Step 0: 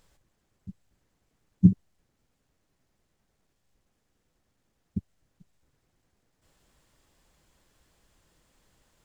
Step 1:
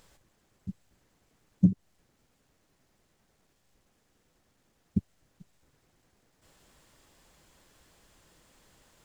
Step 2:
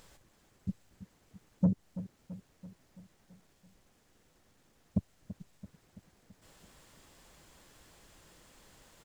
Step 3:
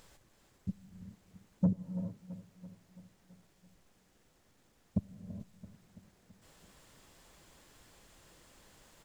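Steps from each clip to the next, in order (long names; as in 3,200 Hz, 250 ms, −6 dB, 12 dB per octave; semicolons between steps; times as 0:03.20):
low-shelf EQ 120 Hz −5.5 dB; downward compressor 10 to 1, threshold −23 dBFS, peak gain reduction 11 dB; level +6 dB
in parallel at +1 dB: brickwall limiter −21.5 dBFS, peak gain reduction 11.5 dB; on the sum: soft clipping −15.5 dBFS, distortion −12 dB; repeating echo 334 ms, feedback 58%, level −14 dB; level −4 dB
reverb whose tail is shaped and stops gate 460 ms rising, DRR 9.5 dB; level −1.5 dB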